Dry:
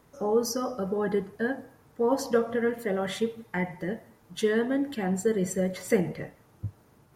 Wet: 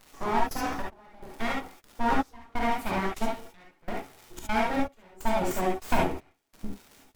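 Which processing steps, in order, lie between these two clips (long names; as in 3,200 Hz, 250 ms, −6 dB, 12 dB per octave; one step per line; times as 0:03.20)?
surface crackle 140 per second −39 dBFS
full-wave rectification
gate pattern "xxxx.xxx....x" 147 BPM −24 dB
reverb whose tail is shaped and stops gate 90 ms rising, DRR −2 dB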